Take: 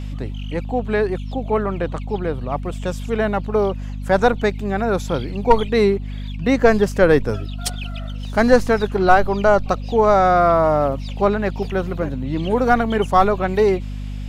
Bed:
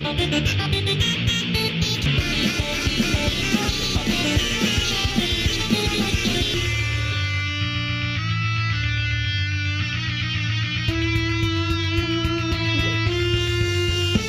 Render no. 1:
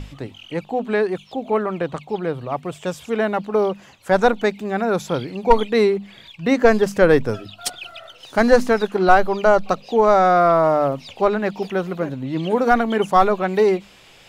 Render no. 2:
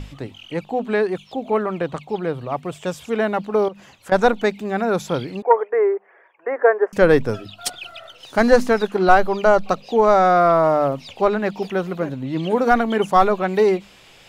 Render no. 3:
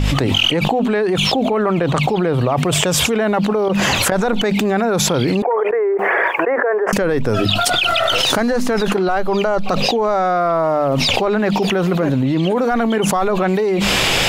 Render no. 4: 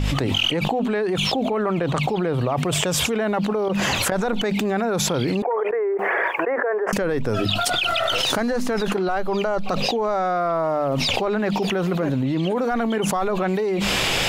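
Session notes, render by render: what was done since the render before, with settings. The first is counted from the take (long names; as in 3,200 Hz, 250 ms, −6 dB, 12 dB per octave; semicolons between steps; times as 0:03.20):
mains-hum notches 50/100/150/200/250 Hz
0:03.68–0:04.12: downward compressor, threshold −32 dBFS; 0:05.42–0:06.93: elliptic band-pass filter 400–1,800 Hz
brickwall limiter −12 dBFS, peak gain reduction 10 dB; envelope flattener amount 100%
level −5.5 dB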